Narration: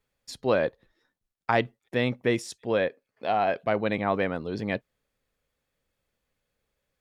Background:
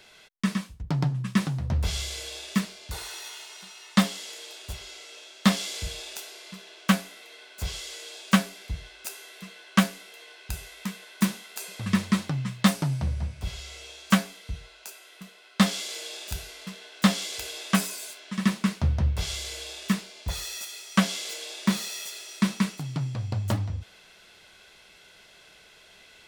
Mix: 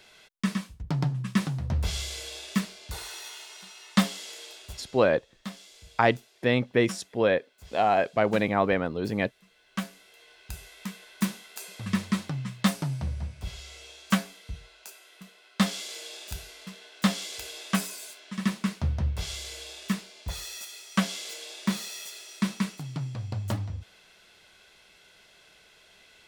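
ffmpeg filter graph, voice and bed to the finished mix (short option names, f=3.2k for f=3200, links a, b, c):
-filter_complex "[0:a]adelay=4500,volume=2dB[a];[1:a]volume=13dB,afade=t=out:st=4.44:d=0.67:silence=0.149624,afade=t=in:st=9.45:d=1.41:silence=0.188365[b];[a][b]amix=inputs=2:normalize=0"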